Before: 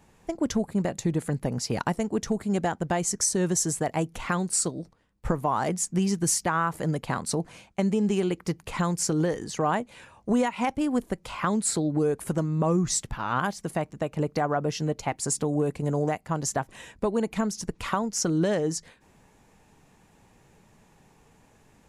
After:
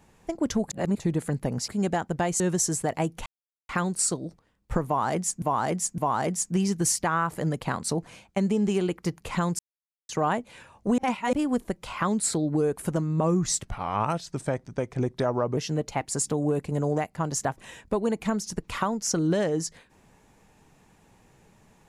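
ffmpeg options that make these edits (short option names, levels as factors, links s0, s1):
-filter_complex "[0:a]asplit=14[s0][s1][s2][s3][s4][s5][s6][s7][s8][s9][s10][s11][s12][s13];[s0]atrim=end=0.702[s14];[s1]atrim=start=0.698:end=1.002,asetpts=PTS-STARTPTS,areverse[s15];[s2]atrim=start=0.998:end=1.682[s16];[s3]atrim=start=2.388:end=3.112[s17];[s4]atrim=start=3.368:end=4.23,asetpts=PTS-STARTPTS,afade=t=out:st=0.858:d=0.004:c=hsin,apad=pad_dur=0.43[s18];[s5]atrim=start=4.23:end=5.962,asetpts=PTS-STARTPTS,afade=t=in:d=0.004:c=hsin[s19];[s6]atrim=start=5.398:end=5.962[s20];[s7]atrim=start=5.398:end=9.01,asetpts=PTS-STARTPTS,afade=t=out:st=3.608:d=0.004:c=hsin[s21];[s8]atrim=start=9.01:end=9.51,asetpts=PTS-STARTPTS,volume=0[s22];[s9]atrim=start=9.51:end=10.402,asetpts=PTS-STARTPTS,afade=t=in:d=0.004:c=hsin[s23];[s10]atrim=start=10.398:end=10.752,asetpts=PTS-STARTPTS,areverse[s24];[s11]atrim=start=10.748:end=13.054[s25];[s12]atrim=start=13.05:end=14.68,asetpts=PTS-STARTPTS,asetrate=37044,aresample=44100[s26];[s13]atrim=start=14.676[s27];[s14][s15]acrossfade=d=0.004:c1=hsin:c2=hsin[s28];[s28][s16]acrossfade=d=0.004:c1=hsin:c2=hsin[s29];[s29][s17]acrossfade=d=0.004:c1=hsin:c2=hsin[s30];[s18][s19]concat=n=2:v=0:a=1[s31];[s30][s31]acrossfade=d=0.004:c1=hsin:c2=hsin[s32];[s32][s20]acrossfade=d=0.004:c1=hsin:c2=hsin[s33];[s21][s22][s23]concat=n=3:v=0:a=1[s34];[s33][s34]acrossfade=d=0.004:c1=hsin:c2=hsin[s35];[s35][s24]acrossfade=d=0.004:c1=hsin:c2=hsin[s36];[s36][s25]acrossfade=d=0.004:c1=hsin:c2=hsin[s37];[s37][s26]acrossfade=d=0.004:c1=hsin:c2=hsin[s38];[s38][s27]acrossfade=d=0.004:c1=hsin:c2=hsin"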